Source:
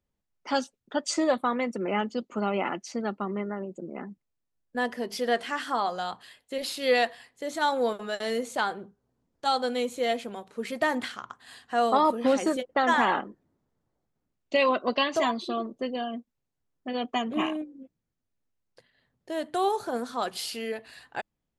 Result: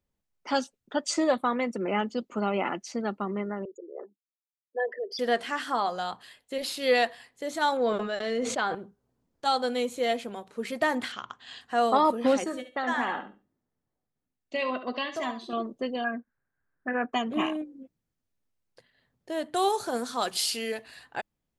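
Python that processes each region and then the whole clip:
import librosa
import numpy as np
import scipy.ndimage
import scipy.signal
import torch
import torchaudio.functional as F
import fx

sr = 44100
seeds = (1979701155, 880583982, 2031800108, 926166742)

y = fx.chain(x, sr, fx.envelope_sharpen(power=3.0),
    fx.highpass(hz=410.0, slope=24), at=(3.65, 5.19))
y = fx.chain(y, sr, fx.air_absorb(metres=110.0),
    fx.notch(hz=890.0, q=12.0),
    fx.sustainer(db_per_s=43.0), at=(7.77, 8.75))
y = fx.chain(y, sr, fx.steep_lowpass(hz=7400.0, slope=48),
    fx.peak_eq(hz=3100.0, db=9.0, octaves=0.62), at=(11.12, 11.61))
y = fx.chain(y, sr, fx.peak_eq(hz=1800.0, db=3.5, octaves=0.42),
    fx.comb_fb(f0_hz=250.0, decay_s=0.29, harmonics='odd', damping=0.0, mix_pct=60),
    fx.echo_feedback(ms=70, feedback_pct=20, wet_db=-11.5), at=(12.44, 15.53))
y = fx.chain(y, sr, fx.lowpass_res(hz=1600.0, q=11.0),
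    fx.resample_bad(factor=8, down='none', up='filtered'), at=(16.04, 17.13))
y = fx.chain(y, sr, fx.block_float(bits=7),
    fx.lowpass(hz=10000.0, slope=12),
    fx.high_shelf(hz=4000.0, db=11.5), at=(19.56, 20.84))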